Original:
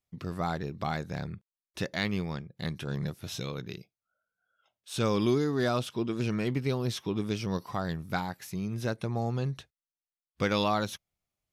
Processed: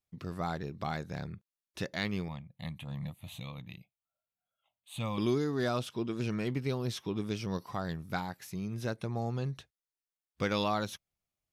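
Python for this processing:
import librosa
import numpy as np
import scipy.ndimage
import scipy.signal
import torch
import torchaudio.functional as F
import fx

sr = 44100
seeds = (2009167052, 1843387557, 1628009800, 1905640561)

y = fx.fixed_phaser(x, sr, hz=1500.0, stages=6, at=(2.28, 5.18))
y = F.gain(torch.from_numpy(y), -3.5).numpy()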